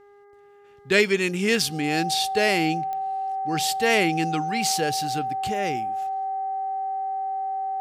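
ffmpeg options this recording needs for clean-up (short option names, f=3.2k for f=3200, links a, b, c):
-af "adeclick=t=4,bandreject=f=406:t=h:w=4,bandreject=f=812:t=h:w=4,bandreject=f=1.218k:t=h:w=4,bandreject=f=1.624k:t=h:w=4,bandreject=f=2.03k:t=h:w=4,bandreject=f=770:w=30"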